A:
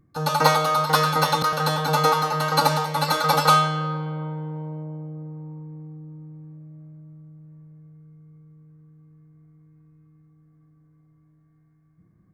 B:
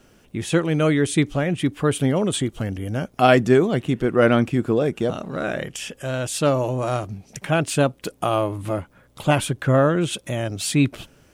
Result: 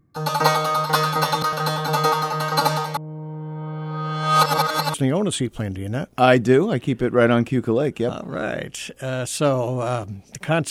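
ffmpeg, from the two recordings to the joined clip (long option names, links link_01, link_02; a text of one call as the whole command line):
ffmpeg -i cue0.wav -i cue1.wav -filter_complex "[0:a]apad=whole_dur=10.7,atrim=end=10.7,asplit=2[link_01][link_02];[link_01]atrim=end=2.972[link_03];[link_02]atrim=start=2.968:end=4.942,asetpts=PTS-STARTPTS,areverse[link_04];[1:a]atrim=start=1.948:end=7.71[link_05];[link_03][link_04]acrossfade=duration=0.004:curve1=hsin:curve2=hsin[link_06];[link_06][link_05]acrossfade=duration=0.004:curve1=hsin:curve2=hsin" out.wav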